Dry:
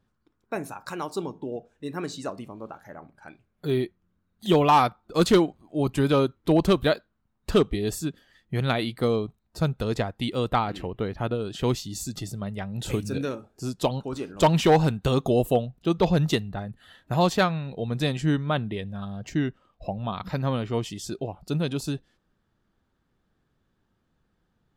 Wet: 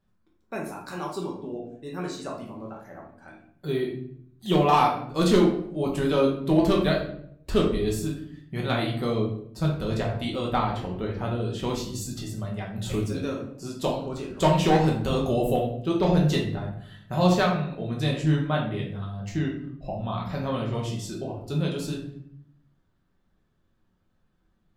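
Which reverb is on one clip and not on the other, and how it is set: shoebox room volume 120 m³, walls mixed, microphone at 1.1 m; gain -5 dB

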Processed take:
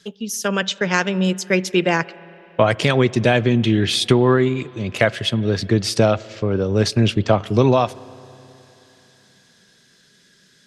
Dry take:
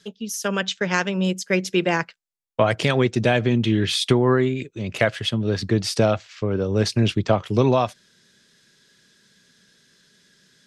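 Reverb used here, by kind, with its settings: spring tank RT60 3.4 s, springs 30/53 ms, chirp 65 ms, DRR 20 dB; gain +3 dB

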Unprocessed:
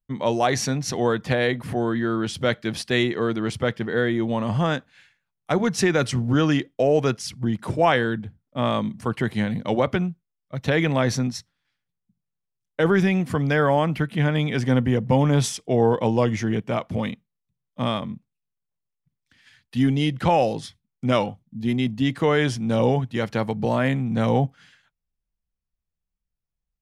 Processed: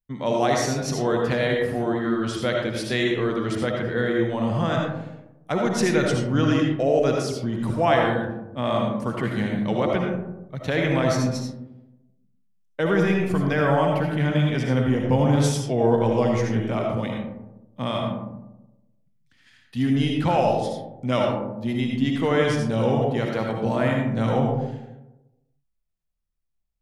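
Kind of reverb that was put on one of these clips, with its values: digital reverb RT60 1 s, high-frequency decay 0.3×, pre-delay 35 ms, DRR 0 dB; gain -3.5 dB

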